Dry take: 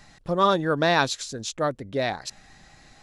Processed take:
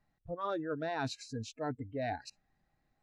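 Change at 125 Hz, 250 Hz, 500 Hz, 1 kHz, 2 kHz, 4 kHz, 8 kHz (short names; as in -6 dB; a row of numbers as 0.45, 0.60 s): -11.0, -11.0, -13.5, -14.5, -16.0, -17.5, -17.0 dB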